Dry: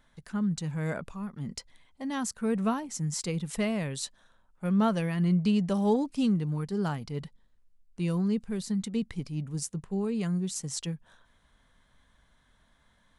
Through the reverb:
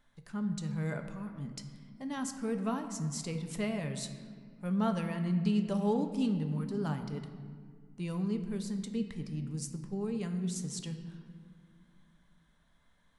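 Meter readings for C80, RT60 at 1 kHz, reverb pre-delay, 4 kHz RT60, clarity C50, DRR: 10.0 dB, 1.8 s, 4 ms, 1.2 s, 9.0 dB, 6.0 dB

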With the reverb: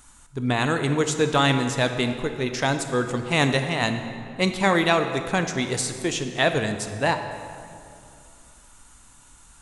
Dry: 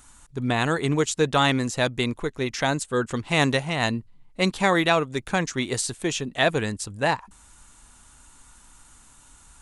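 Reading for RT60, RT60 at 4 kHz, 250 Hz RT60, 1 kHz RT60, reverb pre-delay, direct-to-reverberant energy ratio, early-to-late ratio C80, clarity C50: 2.5 s, 1.6 s, 2.9 s, 2.4 s, 16 ms, 7.0 dB, 9.0 dB, 8.0 dB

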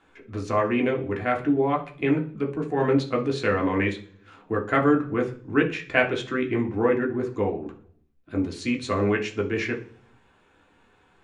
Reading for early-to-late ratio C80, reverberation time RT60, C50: 17.5 dB, 0.50 s, 12.5 dB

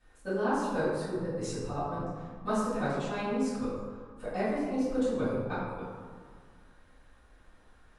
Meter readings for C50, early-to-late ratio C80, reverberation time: -1.5 dB, 1.0 dB, 1.8 s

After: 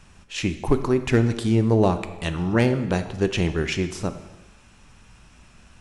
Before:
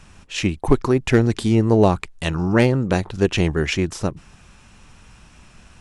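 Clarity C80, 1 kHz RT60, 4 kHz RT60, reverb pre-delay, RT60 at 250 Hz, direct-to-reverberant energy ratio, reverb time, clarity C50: 13.5 dB, 1.1 s, 1.0 s, 7 ms, 1.1 s, 9.5 dB, 1.1 s, 11.5 dB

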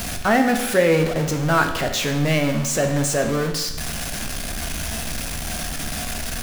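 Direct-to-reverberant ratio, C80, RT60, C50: 4.5 dB, 9.5 dB, 1.0 s, 8.0 dB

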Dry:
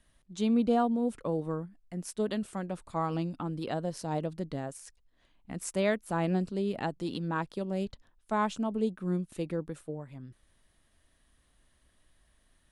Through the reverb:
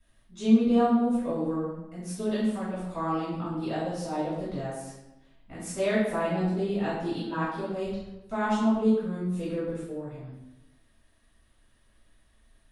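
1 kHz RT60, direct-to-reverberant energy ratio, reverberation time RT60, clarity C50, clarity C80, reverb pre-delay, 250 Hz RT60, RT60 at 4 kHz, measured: 0.95 s, -11.0 dB, 0.95 s, 0.5 dB, 3.5 dB, 4 ms, 1.1 s, 0.70 s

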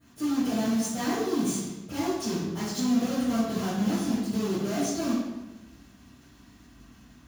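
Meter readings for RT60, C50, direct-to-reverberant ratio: 1.1 s, -1.0 dB, -20.0 dB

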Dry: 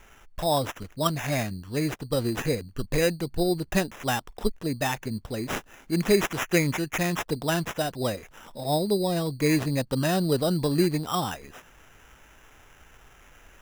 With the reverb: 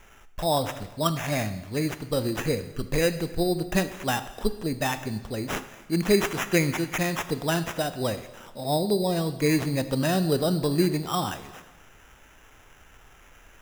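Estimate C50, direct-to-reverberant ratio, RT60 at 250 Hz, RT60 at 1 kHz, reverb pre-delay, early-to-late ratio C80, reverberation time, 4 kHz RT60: 12.5 dB, 11.0 dB, 1.2 s, 1.2 s, 6 ms, 14.0 dB, 1.2 s, 1.1 s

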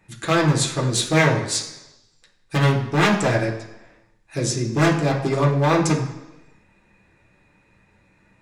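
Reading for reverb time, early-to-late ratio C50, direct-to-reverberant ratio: 1.0 s, 7.5 dB, -4.0 dB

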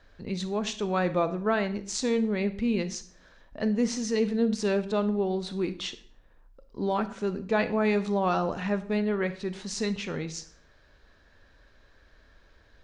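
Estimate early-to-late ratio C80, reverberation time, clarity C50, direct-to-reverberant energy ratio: 18.0 dB, 0.55 s, 14.5 dB, 12.0 dB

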